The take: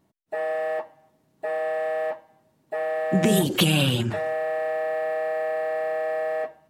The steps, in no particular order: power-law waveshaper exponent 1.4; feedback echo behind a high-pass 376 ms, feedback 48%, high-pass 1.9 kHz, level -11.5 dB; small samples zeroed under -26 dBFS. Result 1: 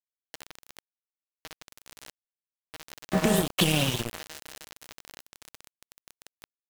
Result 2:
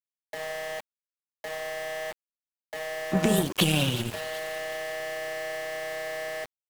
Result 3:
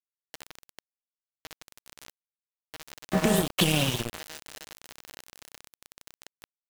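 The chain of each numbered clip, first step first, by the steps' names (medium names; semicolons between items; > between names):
power-law waveshaper > feedback echo behind a high-pass > small samples zeroed; feedback echo behind a high-pass > small samples zeroed > power-law waveshaper; feedback echo behind a high-pass > power-law waveshaper > small samples zeroed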